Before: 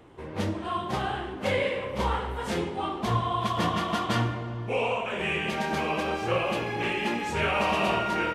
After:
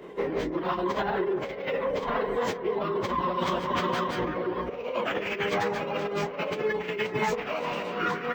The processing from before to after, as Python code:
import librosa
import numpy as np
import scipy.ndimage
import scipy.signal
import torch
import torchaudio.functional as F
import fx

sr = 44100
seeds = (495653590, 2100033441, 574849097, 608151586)

y = fx.hum_notches(x, sr, base_hz=60, count=3)
y = 10.0 ** (-23.0 / 20.0) * np.tanh(y / 10.0 ** (-23.0 / 20.0))
y = fx.low_shelf_res(y, sr, hz=280.0, db=-9.0, q=3.0)
y = fx.small_body(y, sr, hz=(250.0, 2000.0), ring_ms=25, db=9)
y = fx.dereverb_blind(y, sr, rt60_s=0.67)
y = fx.over_compress(y, sr, threshold_db=-31.0, ratio=-0.5)
y = fx.peak_eq(y, sr, hz=100.0, db=7.0, octaves=0.24)
y = fx.notch(y, sr, hz=660.0, q=14.0)
y = fx.echo_bbd(y, sr, ms=146, stages=2048, feedback_pct=78, wet_db=-14.5)
y = fx.pitch_keep_formants(y, sr, semitones=-11.5)
y = np.interp(np.arange(len(y)), np.arange(len(y))[::2], y[::2])
y = y * librosa.db_to_amplitude(4.5)